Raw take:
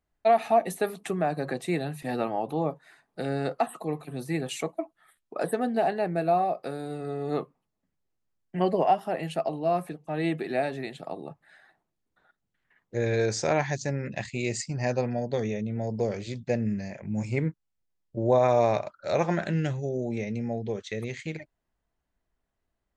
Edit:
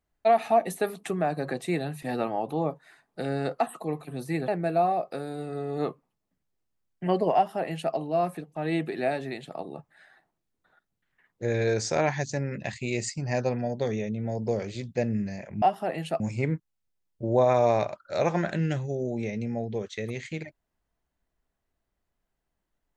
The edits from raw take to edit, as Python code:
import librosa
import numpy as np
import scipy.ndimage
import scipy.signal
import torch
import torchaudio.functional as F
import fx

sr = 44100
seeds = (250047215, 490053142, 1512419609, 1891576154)

y = fx.edit(x, sr, fx.cut(start_s=4.48, length_s=1.52),
    fx.duplicate(start_s=8.87, length_s=0.58, to_s=17.14), tone=tone)